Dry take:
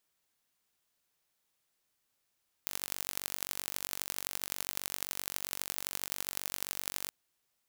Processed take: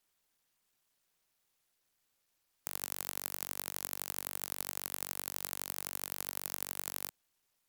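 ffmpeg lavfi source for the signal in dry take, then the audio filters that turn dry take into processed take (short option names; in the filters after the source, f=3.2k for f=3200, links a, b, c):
-f lavfi -i "aevalsrc='0.501*eq(mod(n,928),0)*(0.5+0.5*eq(mod(n,3712),0))':d=4.44:s=44100"
-filter_complex "[0:a]acrossover=split=210|1500|6500[a][b][c][d];[c]asoftclip=type=tanh:threshold=-32.5dB[e];[a][b][e][d]amix=inputs=4:normalize=0" -ar 48000 -c:a sbc -b:a 128k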